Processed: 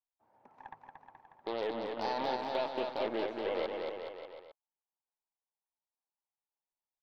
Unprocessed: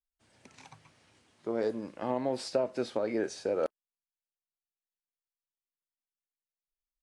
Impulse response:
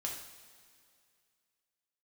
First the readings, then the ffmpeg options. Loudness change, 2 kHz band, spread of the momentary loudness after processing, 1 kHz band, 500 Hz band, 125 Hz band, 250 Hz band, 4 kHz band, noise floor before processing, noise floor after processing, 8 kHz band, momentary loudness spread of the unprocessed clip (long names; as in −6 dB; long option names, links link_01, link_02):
−3.0 dB, +2.5 dB, 19 LU, +4.0 dB, −3.5 dB, −9.0 dB, −6.0 dB, +2.0 dB, below −85 dBFS, below −85 dBFS, below −15 dB, 5 LU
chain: -filter_complex "[0:a]lowpass=frequency=880:width_type=q:width=4.6,alimiter=limit=-22.5dB:level=0:latency=1:release=16,aeval=exprs='0.075*(cos(1*acos(clip(val(0)/0.075,-1,1)))-cos(1*PI/2))+0.0106*(cos(6*acos(clip(val(0)/0.075,-1,1)))-cos(6*PI/2))+0.00266*(cos(7*acos(clip(val(0)/0.075,-1,1)))-cos(7*PI/2))':channel_layout=same,aemphasis=mode=production:type=bsi,asplit=2[link_01][link_02];[link_02]aecho=0:1:230|425.5|591.7|732.9|853:0.631|0.398|0.251|0.158|0.1[link_03];[link_01][link_03]amix=inputs=2:normalize=0,volume=-3dB"